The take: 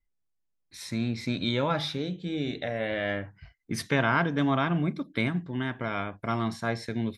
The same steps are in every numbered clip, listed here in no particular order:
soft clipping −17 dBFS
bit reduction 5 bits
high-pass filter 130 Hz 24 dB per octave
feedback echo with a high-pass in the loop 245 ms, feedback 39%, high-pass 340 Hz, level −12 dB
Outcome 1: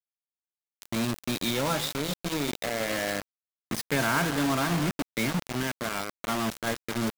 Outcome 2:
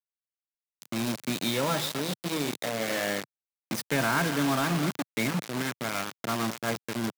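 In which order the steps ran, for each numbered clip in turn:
high-pass filter, then soft clipping, then feedback echo with a high-pass in the loop, then bit reduction
feedback echo with a high-pass in the loop, then bit reduction, then high-pass filter, then soft clipping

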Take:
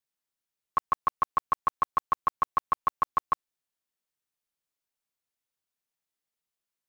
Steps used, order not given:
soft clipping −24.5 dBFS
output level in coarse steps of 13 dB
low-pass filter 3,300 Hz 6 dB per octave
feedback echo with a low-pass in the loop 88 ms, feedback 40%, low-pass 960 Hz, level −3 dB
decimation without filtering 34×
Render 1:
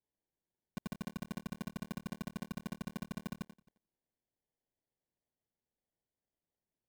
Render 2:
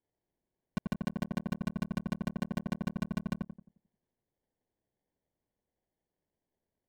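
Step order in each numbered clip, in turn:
feedback echo with a low-pass in the loop, then soft clipping, then output level in coarse steps, then low-pass filter, then decimation without filtering
output level in coarse steps, then decimation without filtering, then low-pass filter, then soft clipping, then feedback echo with a low-pass in the loop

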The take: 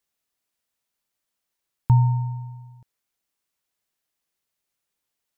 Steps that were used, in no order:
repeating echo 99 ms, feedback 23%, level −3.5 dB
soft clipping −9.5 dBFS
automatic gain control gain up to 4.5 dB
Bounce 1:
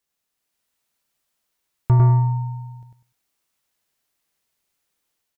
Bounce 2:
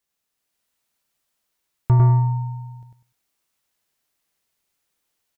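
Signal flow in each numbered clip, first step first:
automatic gain control, then repeating echo, then soft clipping
repeating echo, then automatic gain control, then soft clipping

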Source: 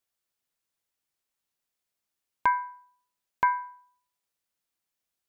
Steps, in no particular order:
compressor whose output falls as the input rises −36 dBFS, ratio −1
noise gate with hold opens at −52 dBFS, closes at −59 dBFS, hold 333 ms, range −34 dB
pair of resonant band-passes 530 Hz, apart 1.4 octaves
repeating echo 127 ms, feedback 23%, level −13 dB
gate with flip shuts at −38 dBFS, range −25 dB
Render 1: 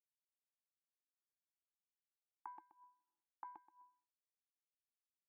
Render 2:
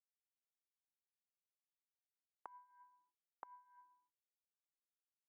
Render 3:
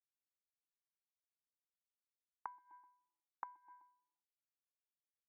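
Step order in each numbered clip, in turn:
gate with flip, then compressor whose output falls as the input rises, then repeating echo, then noise gate with hold, then pair of resonant band-passes
pair of resonant band-passes, then compressor whose output falls as the input rises, then repeating echo, then noise gate with hold, then gate with flip
repeating echo, then noise gate with hold, then pair of resonant band-passes, then gate with flip, then compressor whose output falls as the input rises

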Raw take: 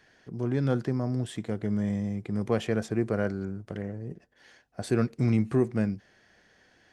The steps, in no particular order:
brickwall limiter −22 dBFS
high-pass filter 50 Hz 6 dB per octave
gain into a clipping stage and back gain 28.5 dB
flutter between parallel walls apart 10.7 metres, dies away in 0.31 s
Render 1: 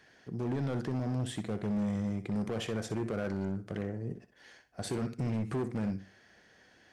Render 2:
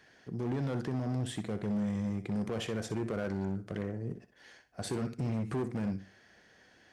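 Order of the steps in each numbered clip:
high-pass filter, then brickwall limiter, then flutter between parallel walls, then gain into a clipping stage and back
brickwall limiter, then flutter between parallel walls, then gain into a clipping stage and back, then high-pass filter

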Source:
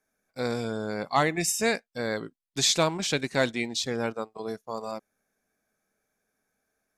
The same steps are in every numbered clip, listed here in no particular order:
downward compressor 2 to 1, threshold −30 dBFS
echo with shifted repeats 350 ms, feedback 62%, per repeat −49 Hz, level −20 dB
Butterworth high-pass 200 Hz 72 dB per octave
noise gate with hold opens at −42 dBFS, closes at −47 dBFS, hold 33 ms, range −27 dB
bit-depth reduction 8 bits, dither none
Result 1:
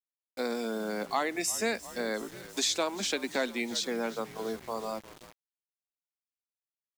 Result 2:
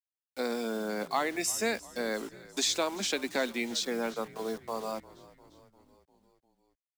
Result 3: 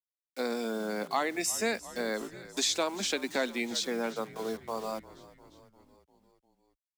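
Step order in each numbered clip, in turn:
Butterworth high-pass, then echo with shifted repeats, then noise gate with hold, then bit-depth reduction, then downward compressor
noise gate with hold, then Butterworth high-pass, then downward compressor, then bit-depth reduction, then echo with shifted repeats
noise gate with hold, then bit-depth reduction, then Butterworth high-pass, then echo with shifted repeats, then downward compressor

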